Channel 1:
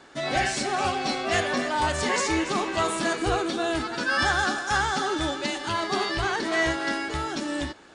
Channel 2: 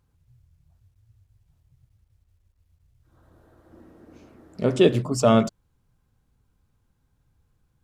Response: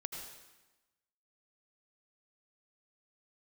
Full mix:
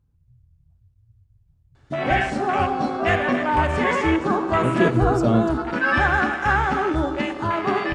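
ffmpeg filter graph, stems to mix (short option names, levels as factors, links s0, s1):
-filter_complex "[0:a]afwtdn=0.0355,adelay=1750,volume=1.26,asplit=2[s0][s1];[s1]volume=0.531[s2];[1:a]lowshelf=f=470:g=9.5,volume=0.316[s3];[2:a]atrim=start_sample=2205[s4];[s2][s4]afir=irnorm=-1:irlink=0[s5];[s0][s3][s5]amix=inputs=3:normalize=0,bass=f=250:g=4,treble=f=4000:g=-2"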